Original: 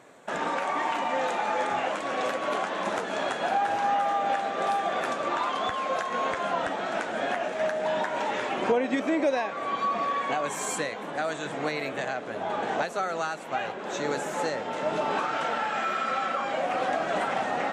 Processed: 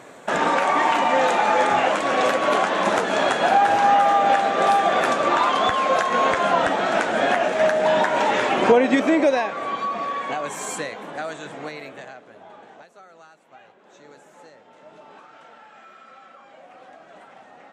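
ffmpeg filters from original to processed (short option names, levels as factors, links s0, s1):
-af "volume=2.82,afade=t=out:st=8.89:d=0.98:silence=0.398107,afade=t=out:st=10.94:d=1.31:silence=0.237137,afade=t=out:st=12.25:d=0.52:silence=0.446684"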